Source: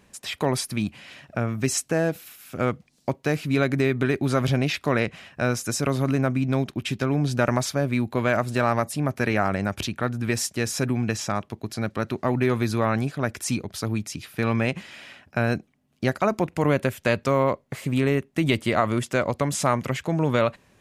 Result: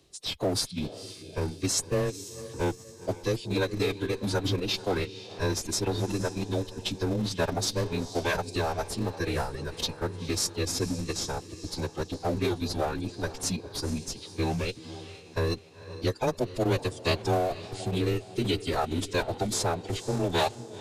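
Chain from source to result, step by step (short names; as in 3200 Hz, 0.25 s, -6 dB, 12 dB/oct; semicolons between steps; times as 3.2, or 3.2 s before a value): reverb removal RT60 1.9 s; graphic EQ 250/500/1000/2000/4000 Hz -6/+4/-7/-11/+10 dB; soft clip -9 dBFS, distortion -33 dB; on a send: diffused feedback echo 0.482 s, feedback 44%, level -12.5 dB; on the sum: frequency shift +24 Hz; in parallel at -8.5 dB: Schmitt trigger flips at -24 dBFS; on the sum: formant-preserving pitch shift -7 st; gain -2.5 dB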